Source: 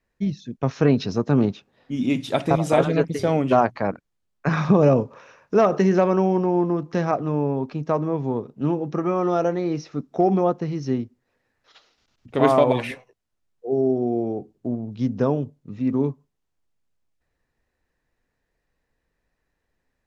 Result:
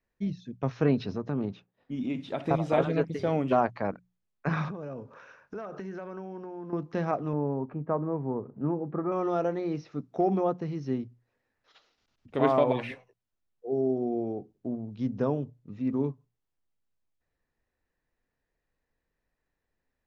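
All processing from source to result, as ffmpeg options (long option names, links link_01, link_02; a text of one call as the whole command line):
ffmpeg -i in.wav -filter_complex "[0:a]asettb=1/sr,asplit=3[link_01][link_02][link_03];[link_01]atrim=end=1.114[link_04];[link_02]atrim=start=1.11:end=2.44,asetpts=PTS-STARTPTS,afade=type=in:duration=0.004:curve=qsin,afade=type=out:start_time=1.326:duration=0.004:curve=qsin,aemphasis=mode=reproduction:type=cd,agate=range=-33dB:threshold=-57dB:ratio=3:release=100:detection=peak,acompressor=threshold=-23dB:ratio=2:attack=3.2:release=140:knee=1:detection=peak[link_05];[link_03]atrim=start=2.436[link_06];[link_04][link_05]acrossfade=duration=0.004:curve1=hsin:curve2=qsin[link_07];[link_07][link_06]acrossfade=duration=0.004:curve1=qsin:curve2=hsin,asettb=1/sr,asplit=3[link_08][link_09][link_10];[link_08]atrim=end=4.684[link_11];[link_09]atrim=start=4.68:end=6.73,asetpts=PTS-STARTPTS,afade=type=in:duration=0.004:curve=qsin,afade=type=out:start_time=2.046:duration=0.004:curve=qsin,equalizer=frequency=1500:width_type=o:width=0.32:gain=9,acompressor=threshold=-31dB:ratio=4:attack=3.2:release=140:knee=1:detection=peak[link_12];[link_10]atrim=start=6.726[link_13];[link_11][link_12]acrossfade=duration=0.004:curve1=hsin:curve2=qsin[link_14];[link_14][link_13]acrossfade=duration=0.004:curve1=qsin:curve2=hsin,asettb=1/sr,asplit=3[link_15][link_16][link_17];[link_15]atrim=end=7.334[link_18];[link_16]atrim=start=7.33:end=9.12,asetpts=PTS-STARTPTS,afade=type=in:duration=0.004:curve=qsin,afade=type=out:start_time=1.786:duration=0.004:curve=qsin,lowpass=frequency=1700:width=0.5412,lowpass=frequency=1700:width=1.3066,acompressor=mode=upward:threshold=-29dB:ratio=2.5:attack=3.2:release=140:knee=2.83:detection=peak[link_19];[link_17]atrim=start=9.116[link_20];[link_18][link_19]acrossfade=duration=0.004:curve1=hsin:curve2=qsin[link_21];[link_21][link_20]acrossfade=duration=0.004:curve1=qsin:curve2=hsin,acrossover=split=5000[link_22][link_23];[link_23]acompressor=threshold=-57dB:ratio=4:attack=1:release=60[link_24];[link_22][link_24]amix=inputs=2:normalize=0,highshelf=frequency=6700:gain=-6.5,bandreject=frequency=60:width_type=h:width=6,bandreject=frequency=120:width_type=h:width=6,bandreject=frequency=180:width_type=h:width=6,volume=-6.5dB" out.wav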